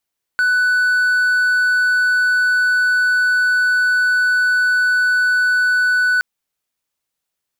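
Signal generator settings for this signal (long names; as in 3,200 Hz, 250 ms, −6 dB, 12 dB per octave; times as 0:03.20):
tone triangle 1,490 Hz −10.5 dBFS 5.82 s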